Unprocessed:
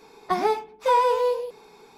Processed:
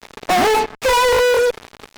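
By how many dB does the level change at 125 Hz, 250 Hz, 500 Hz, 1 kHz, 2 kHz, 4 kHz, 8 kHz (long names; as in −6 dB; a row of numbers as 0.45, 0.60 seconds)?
can't be measured, +9.5 dB, +8.0 dB, +5.5 dB, +16.5 dB, +16.5 dB, +20.0 dB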